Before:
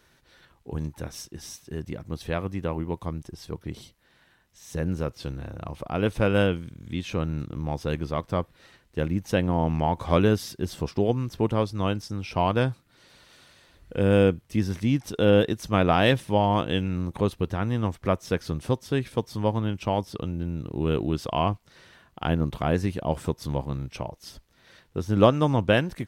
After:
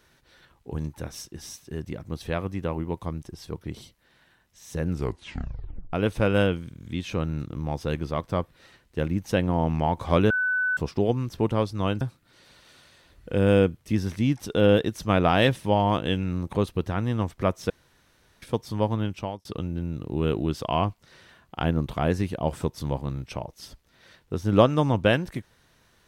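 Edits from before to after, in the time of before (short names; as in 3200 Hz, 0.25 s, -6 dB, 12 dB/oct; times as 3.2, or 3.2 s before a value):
4.88 tape stop 1.05 s
10.3–10.77 bleep 1500 Hz -21.5 dBFS
12.01–12.65 cut
18.34–19.06 room tone
19.72–20.09 fade out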